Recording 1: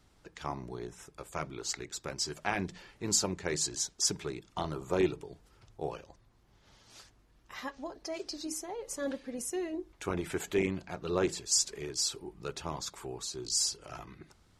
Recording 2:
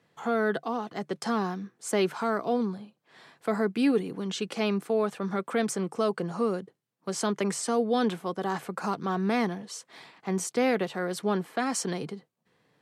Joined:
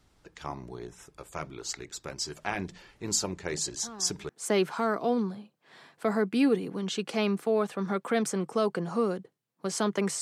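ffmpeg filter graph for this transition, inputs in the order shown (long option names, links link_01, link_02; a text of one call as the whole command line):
ffmpeg -i cue0.wav -i cue1.wav -filter_complex "[1:a]asplit=2[link_01][link_02];[0:a]apad=whole_dur=10.21,atrim=end=10.21,atrim=end=4.292[link_03];[link_02]atrim=start=1.718:end=7.64[link_04];[link_01]atrim=start=1:end=1.72,asetpts=PTS-STARTPTS,volume=-16.5dB,afade=type=in:duration=0.004:curve=hsin,afade=type=out:start_time=0.716:duration=0.004:curve=hsin,adelay=157437S[link_05];[link_03][link_04]acrossfade=duration=0.004:curve1=hsin:curve2=hsin[link_06];[link_06][link_05]amix=inputs=2:normalize=0" out.wav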